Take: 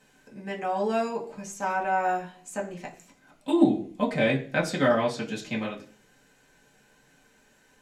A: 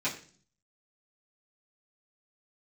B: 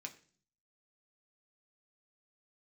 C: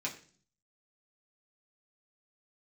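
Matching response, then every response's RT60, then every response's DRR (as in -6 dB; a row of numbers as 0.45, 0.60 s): C; 0.45, 0.45, 0.45 s; -11.5, 2.0, -4.5 dB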